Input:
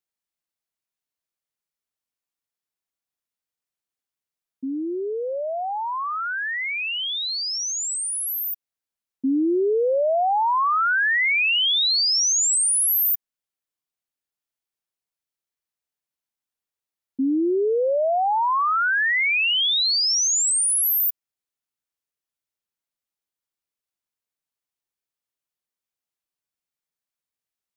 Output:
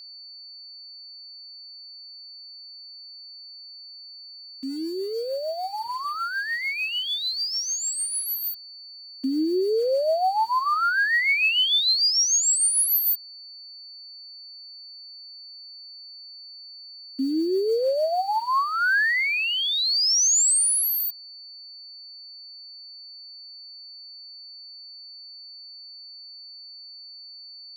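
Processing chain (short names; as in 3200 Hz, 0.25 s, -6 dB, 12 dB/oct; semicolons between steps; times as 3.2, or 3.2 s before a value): HPF 320 Hz 6 dB/oct; bit-crush 8-bit; rotary speaker horn 6.7 Hz, later 0.6 Hz, at 18.11; whine 4500 Hz -42 dBFS; gain +1.5 dB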